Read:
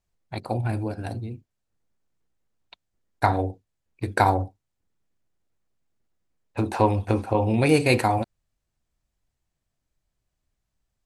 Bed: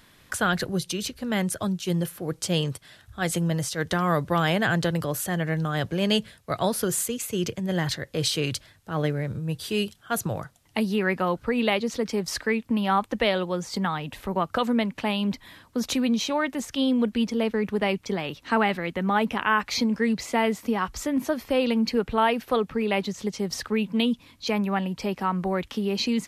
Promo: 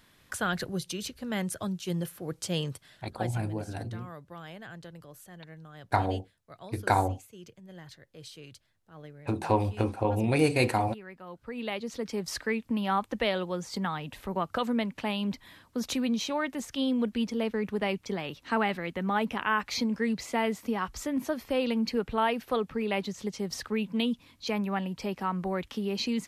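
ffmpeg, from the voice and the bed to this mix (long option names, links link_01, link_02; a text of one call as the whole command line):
ffmpeg -i stem1.wav -i stem2.wav -filter_complex "[0:a]adelay=2700,volume=-5dB[link_01];[1:a]volume=10.5dB,afade=type=out:start_time=2.84:duration=0.58:silence=0.16788,afade=type=in:start_time=11.23:duration=1.08:silence=0.149624[link_02];[link_01][link_02]amix=inputs=2:normalize=0" out.wav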